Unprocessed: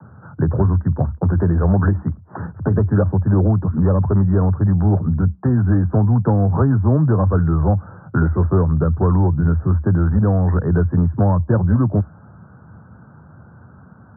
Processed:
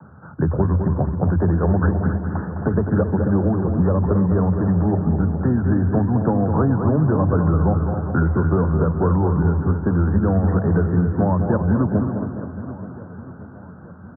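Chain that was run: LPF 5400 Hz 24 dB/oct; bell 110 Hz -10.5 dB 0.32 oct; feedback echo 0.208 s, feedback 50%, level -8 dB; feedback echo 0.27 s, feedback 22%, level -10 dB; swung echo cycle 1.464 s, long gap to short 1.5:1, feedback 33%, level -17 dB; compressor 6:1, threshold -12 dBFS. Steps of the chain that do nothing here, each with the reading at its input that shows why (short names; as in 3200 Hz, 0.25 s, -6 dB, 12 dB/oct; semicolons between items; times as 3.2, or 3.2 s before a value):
LPF 5400 Hz: input band ends at 850 Hz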